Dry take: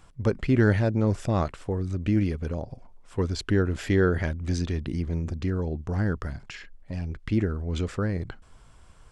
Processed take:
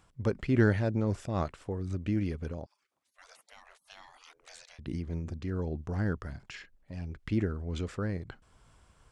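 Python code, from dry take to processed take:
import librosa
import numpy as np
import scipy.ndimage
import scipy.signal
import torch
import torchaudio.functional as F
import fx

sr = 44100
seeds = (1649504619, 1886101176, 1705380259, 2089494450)

y = fx.highpass(x, sr, hz=45.0, slope=6)
y = fx.spec_gate(y, sr, threshold_db=-30, keep='weak', at=(2.66, 4.79))
y = fx.am_noise(y, sr, seeds[0], hz=5.7, depth_pct=65)
y = F.gain(torch.from_numpy(y), -2.5).numpy()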